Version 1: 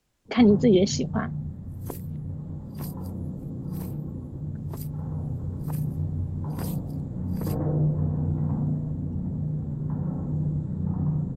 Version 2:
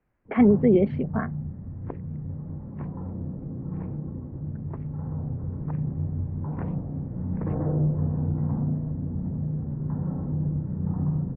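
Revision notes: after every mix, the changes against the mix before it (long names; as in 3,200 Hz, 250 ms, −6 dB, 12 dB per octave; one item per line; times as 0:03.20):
master: add Butterworth low-pass 2,200 Hz 36 dB per octave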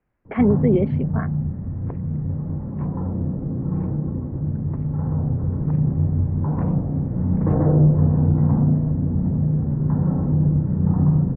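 first sound +9.0 dB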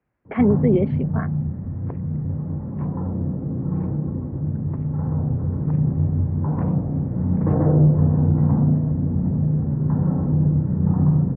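master: add high-pass filter 58 Hz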